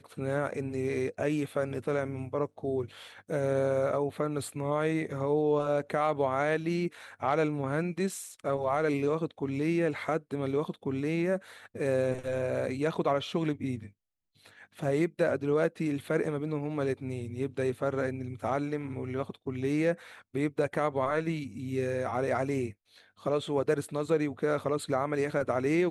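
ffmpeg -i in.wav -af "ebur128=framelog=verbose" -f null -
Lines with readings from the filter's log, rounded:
Integrated loudness:
  I:         -30.9 LUFS
  Threshold: -41.1 LUFS
Loudness range:
  LRA:         2.9 LU
  Threshold: -51.2 LUFS
  LRA low:   -32.5 LUFS
  LRA high:  -29.6 LUFS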